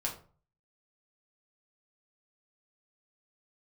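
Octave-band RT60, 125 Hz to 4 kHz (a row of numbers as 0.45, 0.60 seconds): 0.65, 0.45, 0.40, 0.40, 0.30, 0.25 seconds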